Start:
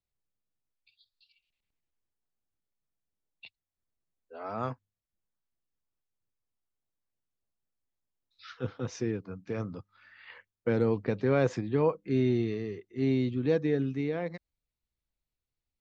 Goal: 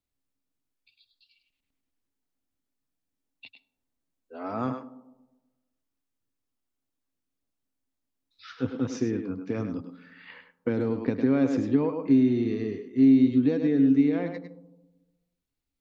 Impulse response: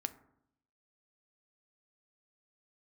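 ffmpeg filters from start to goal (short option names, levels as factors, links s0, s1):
-filter_complex "[0:a]asplit=2[s0][s1];[s1]highpass=f=180:w=0.5412,highpass=f=180:w=1.3066[s2];[1:a]atrim=start_sample=2205,asetrate=27783,aresample=44100,adelay=102[s3];[s2][s3]afir=irnorm=-1:irlink=0,volume=0.335[s4];[s0][s4]amix=inputs=2:normalize=0,acompressor=threshold=0.0447:ratio=5,equalizer=f=270:w=4.5:g=14,volume=1.26"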